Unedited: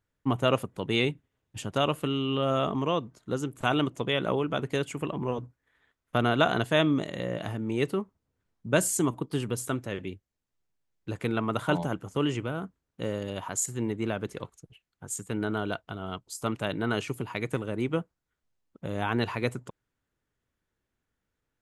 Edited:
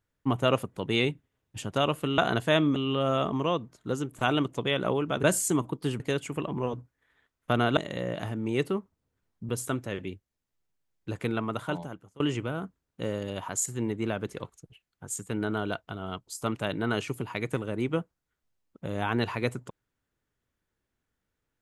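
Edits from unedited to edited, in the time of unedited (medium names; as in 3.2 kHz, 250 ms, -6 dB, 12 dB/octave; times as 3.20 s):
6.42–7.00 s: move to 2.18 s
8.72–9.49 s: move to 4.65 s
11.21–12.20 s: fade out, to -24 dB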